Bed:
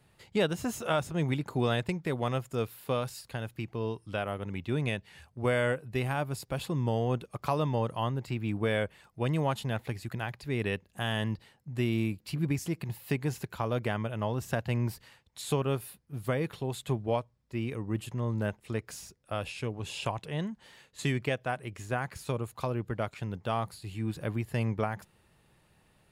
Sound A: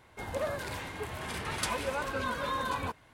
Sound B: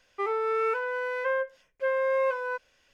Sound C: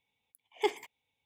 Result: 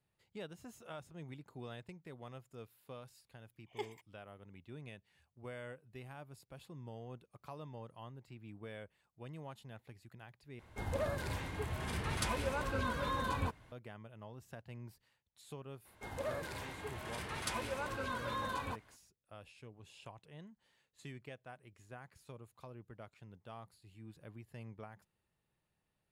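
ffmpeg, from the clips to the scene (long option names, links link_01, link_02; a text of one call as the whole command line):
ffmpeg -i bed.wav -i cue0.wav -i cue1.wav -i cue2.wav -filter_complex "[1:a]asplit=2[link_01][link_02];[0:a]volume=-19.5dB[link_03];[link_01]lowshelf=frequency=210:gain=10[link_04];[link_03]asplit=2[link_05][link_06];[link_05]atrim=end=10.594[link_07];[link_04]atrim=end=3.13,asetpts=PTS-STARTPTS,volume=-5dB[link_08];[link_06]atrim=start=13.716[link_09];[3:a]atrim=end=1.25,asetpts=PTS-STARTPTS,volume=-13dB,afade=type=in:duration=0.004:curve=hsin,afade=type=out:start_time=1.246:duration=0.004:curve=hsin,adelay=3150[link_10];[link_02]atrim=end=3.13,asetpts=PTS-STARTPTS,volume=-6.5dB,afade=type=in:duration=0.02,afade=type=out:start_time=3.11:duration=0.02,adelay=15840[link_11];[link_07][link_08]acrossfade=duration=0.004:curve1=hsin:curve2=hsin[link_12];[link_12][link_09]acrossfade=duration=0.004:curve1=hsin:curve2=hsin[link_13];[link_13][link_10][link_11]amix=inputs=3:normalize=0" out.wav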